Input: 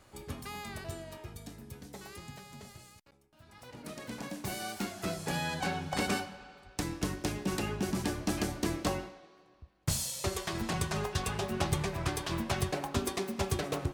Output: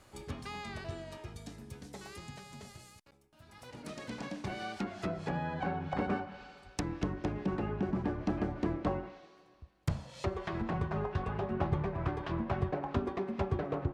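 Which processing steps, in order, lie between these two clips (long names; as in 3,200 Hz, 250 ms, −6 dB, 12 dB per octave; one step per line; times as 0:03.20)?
treble cut that deepens with the level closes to 1,300 Hz, closed at −30.5 dBFS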